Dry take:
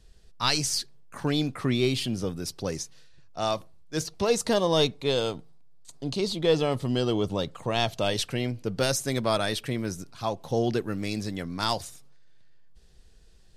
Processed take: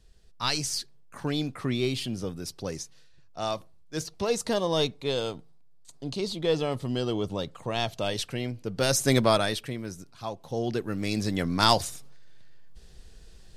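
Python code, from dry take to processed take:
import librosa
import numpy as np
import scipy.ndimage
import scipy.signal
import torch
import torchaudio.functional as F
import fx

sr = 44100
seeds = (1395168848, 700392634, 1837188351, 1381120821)

y = fx.gain(x, sr, db=fx.line((8.72, -3.0), (9.12, 7.0), (9.78, -5.5), (10.51, -5.5), (11.47, 6.5)))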